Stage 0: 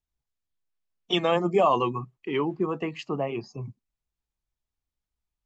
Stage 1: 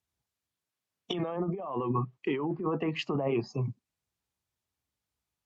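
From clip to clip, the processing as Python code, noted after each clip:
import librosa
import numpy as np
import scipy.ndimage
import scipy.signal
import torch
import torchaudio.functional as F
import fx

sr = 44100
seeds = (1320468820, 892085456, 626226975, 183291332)

y = scipy.signal.sosfilt(scipy.signal.butter(4, 76.0, 'highpass', fs=sr, output='sos'), x)
y = fx.env_lowpass_down(y, sr, base_hz=1400.0, full_db=-24.0)
y = fx.over_compress(y, sr, threshold_db=-31.0, ratio=-1.0)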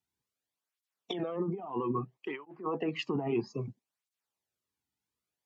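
y = fx.flanger_cancel(x, sr, hz=0.61, depth_ms=1.9)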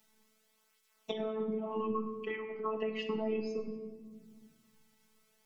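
y = fx.robotise(x, sr, hz=218.0)
y = fx.room_shoebox(y, sr, seeds[0], volume_m3=430.0, walls='mixed', distance_m=0.66)
y = fx.band_squash(y, sr, depth_pct=70)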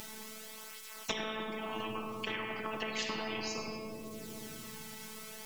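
y = fx.spectral_comp(x, sr, ratio=4.0)
y = y * 10.0 ** (5.5 / 20.0)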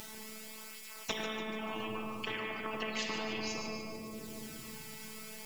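y = fx.echo_feedback(x, sr, ms=147, feedback_pct=49, wet_db=-8.5)
y = y * 10.0 ** (-1.0 / 20.0)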